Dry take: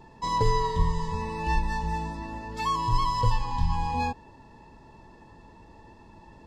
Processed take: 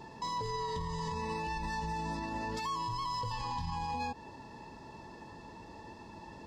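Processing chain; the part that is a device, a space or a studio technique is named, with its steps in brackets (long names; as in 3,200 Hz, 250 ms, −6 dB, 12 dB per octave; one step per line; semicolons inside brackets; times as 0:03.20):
broadcast voice chain (high-pass filter 120 Hz 6 dB per octave; de-essing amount 85%; downward compressor, threshold −31 dBFS, peak gain reduction 10 dB; parametric band 5,100 Hz +4.5 dB 0.87 octaves; brickwall limiter −31.5 dBFS, peak gain reduction 9.5 dB)
level +3 dB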